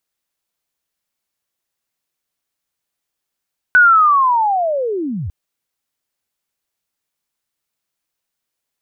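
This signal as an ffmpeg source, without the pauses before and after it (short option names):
-f lavfi -i "aevalsrc='pow(10,(-5-16*t/1.55)/20)*sin(2*PI*(1500*t-1431*t*t/(2*1.55)))':d=1.55:s=44100"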